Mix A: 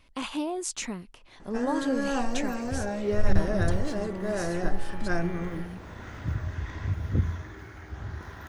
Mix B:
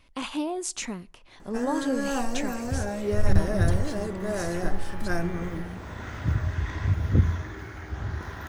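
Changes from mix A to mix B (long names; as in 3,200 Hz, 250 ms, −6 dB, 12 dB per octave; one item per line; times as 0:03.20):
speech: send on
first sound: remove low-pass filter 5,600 Hz 12 dB per octave
second sound +5.0 dB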